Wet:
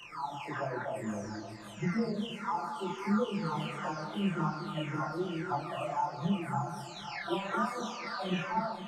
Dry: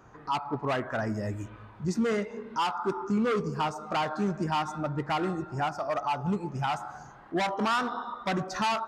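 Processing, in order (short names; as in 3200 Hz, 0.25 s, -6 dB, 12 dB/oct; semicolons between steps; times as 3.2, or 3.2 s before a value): spectral delay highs early, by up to 0.962 s; split-band echo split 670 Hz, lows 0.236 s, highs 0.536 s, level -9 dB; chorus voices 2, 1.2 Hz, delay 28 ms, depth 3.7 ms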